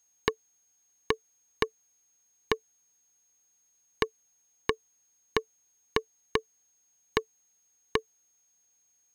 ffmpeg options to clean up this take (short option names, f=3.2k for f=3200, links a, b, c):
-af "bandreject=f=6.5k:w=30"